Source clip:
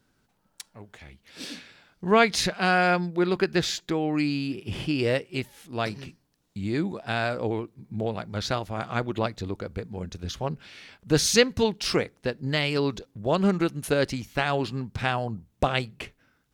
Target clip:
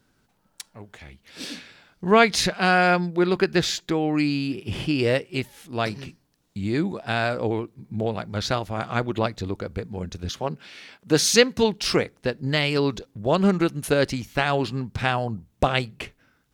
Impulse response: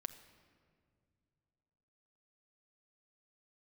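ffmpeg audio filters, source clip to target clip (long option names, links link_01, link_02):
-filter_complex "[0:a]asettb=1/sr,asplit=3[link_01][link_02][link_03];[link_01]atrim=end=10.294[link_04];[link_02]atrim=start=10.29:end=11.59,asetpts=PTS-STARTPTS,afade=type=in:duration=0.004:curve=qsin,afade=type=out:start_time=1.296:duration=0.004:curve=qsin,highpass=170[link_05];[link_03]atrim=start=11.586[link_06];[link_04][link_05]acrossfade=duration=0.004:curve1=hsin:curve2=qsin[link_07];[link_07][link_06]acrossfade=duration=0.004:curve1=qsin:curve2=hsin,volume=3dB"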